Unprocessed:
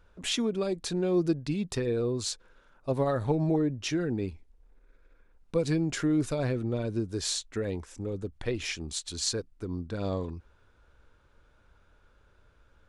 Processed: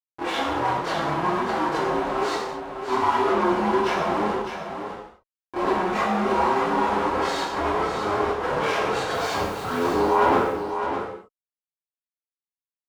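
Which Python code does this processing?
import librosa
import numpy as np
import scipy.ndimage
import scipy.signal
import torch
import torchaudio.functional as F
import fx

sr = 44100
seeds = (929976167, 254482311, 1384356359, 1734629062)

y = fx.band_invert(x, sr, width_hz=500)
y = fx.rider(y, sr, range_db=4, speed_s=0.5)
y = fx.leveller(y, sr, passes=2)
y = fx.schmitt(y, sr, flips_db=-31.5)
y = fx.bandpass_q(y, sr, hz=840.0, q=1.4)
y = fx.dmg_noise_colour(y, sr, seeds[0], colour='white', level_db=-59.0, at=(9.1, 9.9), fade=0.02)
y = fx.chorus_voices(y, sr, voices=4, hz=1.1, base_ms=26, depth_ms=3.0, mix_pct=65)
y = y + 10.0 ** (-8.0 / 20.0) * np.pad(y, (int(606 * sr / 1000.0), 0))[:len(y)]
y = fx.rev_gated(y, sr, seeds[1], gate_ms=270, shape='falling', drr_db=-2.5)
y = F.gain(torch.from_numpy(y), 9.0).numpy()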